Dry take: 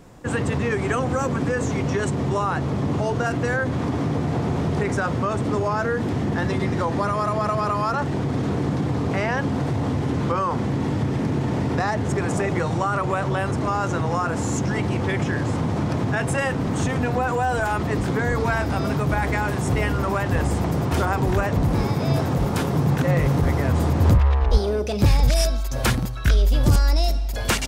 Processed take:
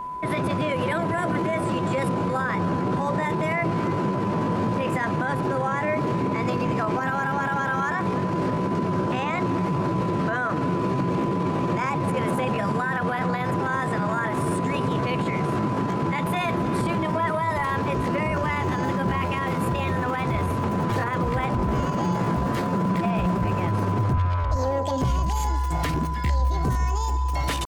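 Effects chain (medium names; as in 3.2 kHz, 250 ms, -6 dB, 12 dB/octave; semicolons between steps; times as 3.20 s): treble shelf 4.6 kHz -8.5 dB; peak limiter -17 dBFS, peak gain reduction 11 dB; pitch shift +4.5 st; echo whose repeats swap between lows and highs 150 ms, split 1.1 kHz, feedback 55%, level -13 dB; whistle 1 kHz -30 dBFS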